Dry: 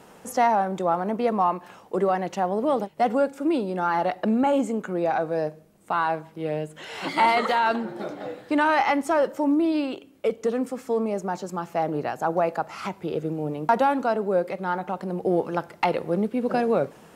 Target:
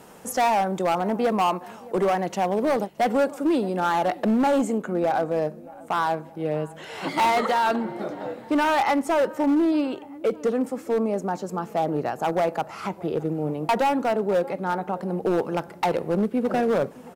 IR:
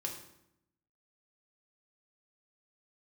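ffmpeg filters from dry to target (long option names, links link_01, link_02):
-filter_complex "[0:a]asetnsamples=nb_out_samples=441:pad=0,asendcmd='4.78 highshelf g -10.5',highshelf=frequency=2200:gain=-5,asplit=2[link_01][link_02];[link_02]adelay=619,lowpass=frequency=2700:poles=1,volume=-22dB,asplit=2[link_03][link_04];[link_04]adelay=619,lowpass=frequency=2700:poles=1,volume=0.5,asplit=2[link_05][link_06];[link_06]adelay=619,lowpass=frequency=2700:poles=1,volume=0.5[link_07];[link_01][link_03][link_05][link_07]amix=inputs=4:normalize=0,asoftclip=type=hard:threshold=-19dB,aemphasis=mode=production:type=cd,volume=2.5dB"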